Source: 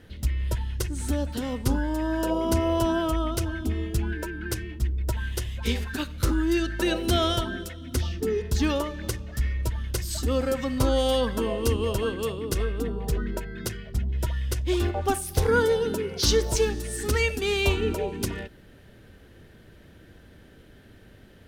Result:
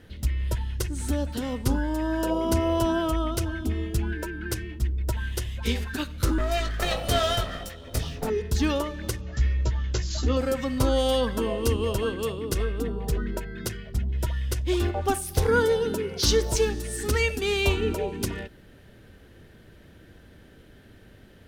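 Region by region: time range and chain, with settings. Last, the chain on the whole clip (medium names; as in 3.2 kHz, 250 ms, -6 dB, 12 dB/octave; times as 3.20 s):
6.38–8.30 s: comb filter that takes the minimum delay 1.6 ms + doubling 19 ms -6 dB
9.21–10.37 s: brick-wall FIR low-pass 7.5 kHz + doubling 16 ms -6 dB
whole clip: none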